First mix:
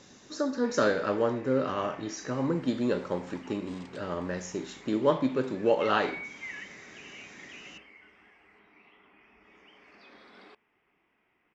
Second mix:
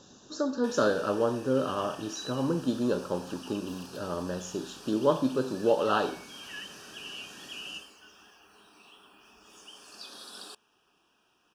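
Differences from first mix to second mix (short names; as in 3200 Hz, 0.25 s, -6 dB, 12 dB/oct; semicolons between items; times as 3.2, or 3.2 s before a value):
first sound: remove tape spacing loss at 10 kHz 42 dB; second sound: remove brick-wall FIR low-pass 8800 Hz; master: add Butterworth band-stop 2100 Hz, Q 1.8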